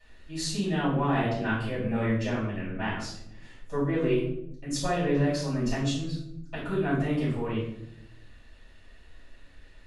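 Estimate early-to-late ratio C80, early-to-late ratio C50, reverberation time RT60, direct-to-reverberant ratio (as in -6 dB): 6.5 dB, 2.5 dB, 0.75 s, -11.5 dB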